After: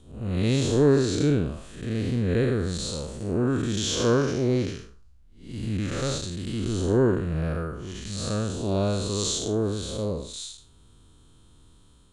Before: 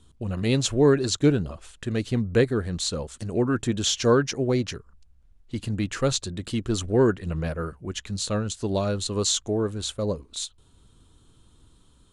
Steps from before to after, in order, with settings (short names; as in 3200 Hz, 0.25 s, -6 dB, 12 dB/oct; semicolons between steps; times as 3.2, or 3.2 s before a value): time blur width 0.207 s; gain +3 dB